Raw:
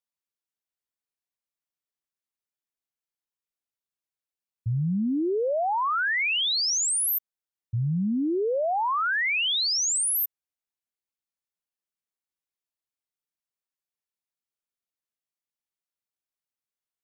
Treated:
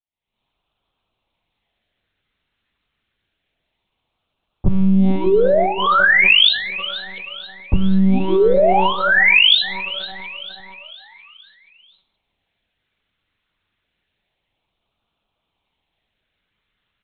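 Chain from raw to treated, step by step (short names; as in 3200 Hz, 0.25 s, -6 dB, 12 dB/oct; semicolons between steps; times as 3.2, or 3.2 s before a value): recorder AGC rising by 75 dB/s; HPF 40 Hz 6 dB/oct; bell 950 Hz +3 dB 0.23 oct; sample leveller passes 3; LFO notch sine 0.28 Hz 760–1900 Hz; on a send: frequency-shifting echo 0.478 s, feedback 48%, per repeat +32 Hz, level -14 dB; on the sum: monotone LPC vocoder at 8 kHz 190 Hz; non-linear reverb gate 0.22 s falling, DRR 11.5 dB; gain +2.5 dB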